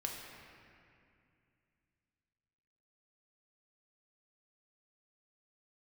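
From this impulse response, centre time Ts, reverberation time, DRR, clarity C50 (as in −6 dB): 102 ms, 2.4 s, −0.5 dB, 1.5 dB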